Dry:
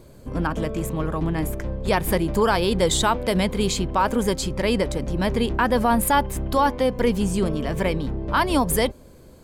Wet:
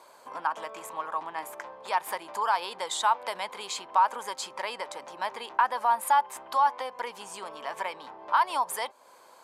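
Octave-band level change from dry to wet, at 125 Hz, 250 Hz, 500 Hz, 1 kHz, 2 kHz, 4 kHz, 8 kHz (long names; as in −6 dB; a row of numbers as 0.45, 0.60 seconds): below −35 dB, −29.5 dB, −15.0 dB, −1.0 dB, −6.5 dB, −8.5 dB, −9.0 dB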